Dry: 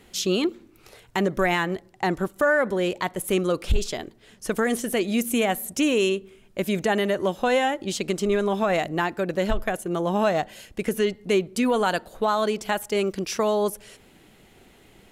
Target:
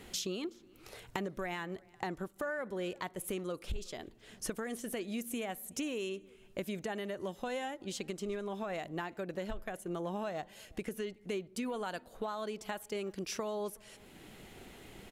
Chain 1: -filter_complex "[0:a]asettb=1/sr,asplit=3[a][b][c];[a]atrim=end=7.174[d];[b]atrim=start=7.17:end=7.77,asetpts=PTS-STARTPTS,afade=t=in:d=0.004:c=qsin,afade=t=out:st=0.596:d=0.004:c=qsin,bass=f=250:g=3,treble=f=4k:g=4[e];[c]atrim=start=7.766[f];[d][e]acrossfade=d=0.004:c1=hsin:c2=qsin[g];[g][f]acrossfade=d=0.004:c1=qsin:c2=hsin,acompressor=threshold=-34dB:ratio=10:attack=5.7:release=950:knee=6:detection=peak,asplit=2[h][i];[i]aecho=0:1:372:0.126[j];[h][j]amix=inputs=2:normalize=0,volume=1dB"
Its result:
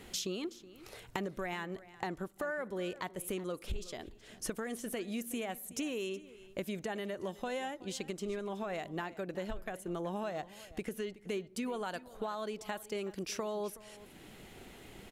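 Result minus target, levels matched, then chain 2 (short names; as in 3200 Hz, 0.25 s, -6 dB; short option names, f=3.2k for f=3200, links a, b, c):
echo-to-direct +9 dB
-filter_complex "[0:a]asettb=1/sr,asplit=3[a][b][c];[a]atrim=end=7.174[d];[b]atrim=start=7.17:end=7.77,asetpts=PTS-STARTPTS,afade=t=in:d=0.004:c=qsin,afade=t=out:st=0.596:d=0.004:c=qsin,bass=f=250:g=3,treble=f=4k:g=4[e];[c]atrim=start=7.766[f];[d][e]acrossfade=d=0.004:c1=hsin:c2=qsin[g];[g][f]acrossfade=d=0.004:c1=qsin:c2=hsin,acompressor=threshold=-34dB:ratio=10:attack=5.7:release=950:knee=6:detection=peak,asplit=2[h][i];[i]aecho=0:1:372:0.0447[j];[h][j]amix=inputs=2:normalize=0,volume=1dB"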